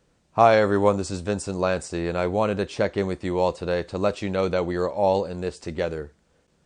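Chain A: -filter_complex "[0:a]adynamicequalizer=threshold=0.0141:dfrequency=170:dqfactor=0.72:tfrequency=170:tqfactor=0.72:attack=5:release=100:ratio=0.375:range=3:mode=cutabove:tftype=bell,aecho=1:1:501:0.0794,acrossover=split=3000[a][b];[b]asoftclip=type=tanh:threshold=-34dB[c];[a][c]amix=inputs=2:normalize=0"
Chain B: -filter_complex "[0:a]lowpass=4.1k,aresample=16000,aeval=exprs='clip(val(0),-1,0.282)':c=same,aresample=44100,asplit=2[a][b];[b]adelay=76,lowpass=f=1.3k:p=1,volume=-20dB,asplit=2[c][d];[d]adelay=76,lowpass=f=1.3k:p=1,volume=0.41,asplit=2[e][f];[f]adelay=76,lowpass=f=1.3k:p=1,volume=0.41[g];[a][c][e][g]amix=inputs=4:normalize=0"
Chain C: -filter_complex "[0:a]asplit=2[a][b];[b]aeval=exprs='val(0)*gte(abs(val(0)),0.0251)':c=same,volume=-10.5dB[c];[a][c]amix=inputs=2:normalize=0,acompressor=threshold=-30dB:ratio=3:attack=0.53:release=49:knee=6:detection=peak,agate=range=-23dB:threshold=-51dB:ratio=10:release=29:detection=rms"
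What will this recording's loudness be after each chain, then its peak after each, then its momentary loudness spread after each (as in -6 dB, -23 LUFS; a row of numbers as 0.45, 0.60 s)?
-25.0, -24.0, -33.0 LUFS; -3.5, -3.0, -19.0 dBFS; 11, 11, 4 LU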